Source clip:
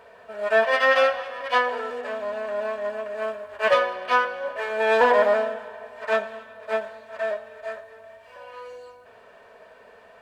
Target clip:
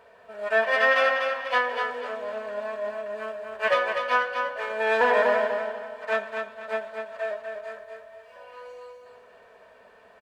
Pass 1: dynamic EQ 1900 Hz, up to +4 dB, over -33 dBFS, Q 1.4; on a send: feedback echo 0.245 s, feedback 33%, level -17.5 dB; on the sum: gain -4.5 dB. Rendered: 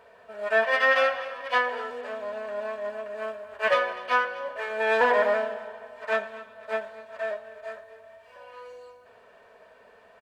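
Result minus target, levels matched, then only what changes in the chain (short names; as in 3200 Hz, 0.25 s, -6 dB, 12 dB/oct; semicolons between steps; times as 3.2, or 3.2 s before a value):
echo-to-direct -12 dB
change: feedback echo 0.245 s, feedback 33%, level -5.5 dB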